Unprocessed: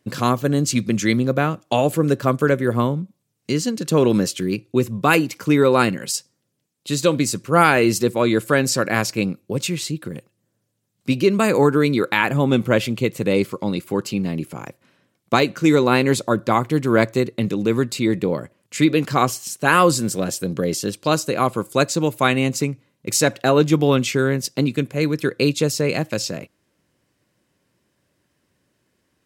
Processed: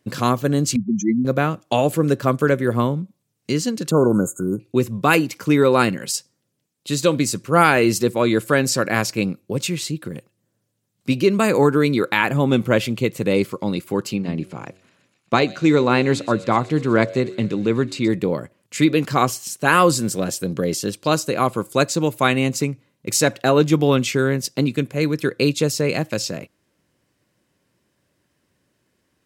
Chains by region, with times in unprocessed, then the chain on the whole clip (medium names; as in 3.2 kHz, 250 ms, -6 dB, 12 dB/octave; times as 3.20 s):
0.76–1.25 s: spectral contrast enhancement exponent 3.4 + upward compressor, threshold -26 dBFS
3.91–4.60 s: brick-wall FIR band-stop 1.5–6.4 kHz + peaking EQ 1.5 kHz +13 dB 0.21 oct
14.16–18.08 s: distance through air 68 m + de-hum 93.75 Hz, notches 8 + feedback echo behind a high-pass 124 ms, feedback 80%, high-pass 3.9 kHz, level -13 dB
whole clip: none